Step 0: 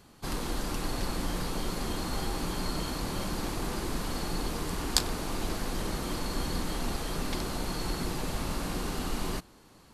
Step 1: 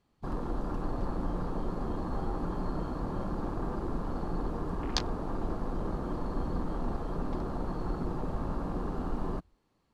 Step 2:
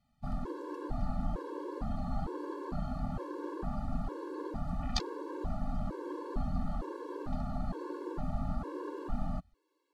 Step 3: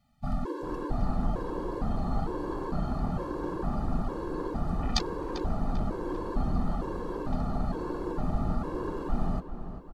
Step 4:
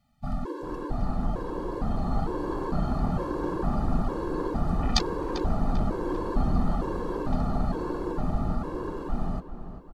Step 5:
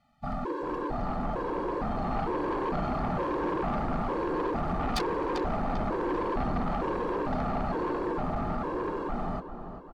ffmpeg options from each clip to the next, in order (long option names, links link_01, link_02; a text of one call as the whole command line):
ffmpeg -i in.wav -af "aemphasis=mode=reproduction:type=50kf,afwtdn=0.0126,bandreject=frequency=1500:width=15" out.wav
ffmpeg -i in.wav -af "afftfilt=real='re*gt(sin(2*PI*1.1*pts/sr)*(1-2*mod(floor(b*sr/1024/290),2)),0)':imag='im*gt(sin(2*PI*1.1*pts/sr)*(1-2*mod(floor(b*sr/1024/290),2)),0)':win_size=1024:overlap=0.75" out.wav
ffmpeg -i in.wav -filter_complex "[0:a]asplit=2[link_01][link_02];[link_02]adelay=394,lowpass=frequency=2900:poles=1,volume=-10.5dB,asplit=2[link_03][link_04];[link_04]adelay=394,lowpass=frequency=2900:poles=1,volume=0.54,asplit=2[link_05][link_06];[link_06]adelay=394,lowpass=frequency=2900:poles=1,volume=0.54,asplit=2[link_07][link_08];[link_08]adelay=394,lowpass=frequency=2900:poles=1,volume=0.54,asplit=2[link_09][link_10];[link_10]adelay=394,lowpass=frequency=2900:poles=1,volume=0.54,asplit=2[link_11][link_12];[link_12]adelay=394,lowpass=frequency=2900:poles=1,volume=0.54[link_13];[link_01][link_03][link_05][link_07][link_09][link_11][link_13]amix=inputs=7:normalize=0,volume=5.5dB" out.wav
ffmpeg -i in.wav -af "dynaudnorm=framelen=240:gausssize=17:maxgain=4dB" out.wav
ffmpeg -i in.wav -filter_complex "[0:a]asplit=2[link_01][link_02];[link_02]highpass=frequency=720:poles=1,volume=14dB,asoftclip=type=tanh:threshold=-6dB[link_03];[link_01][link_03]amix=inputs=2:normalize=0,lowpass=frequency=1500:poles=1,volume=-6dB,asoftclip=type=tanh:threshold=-24dB" out.wav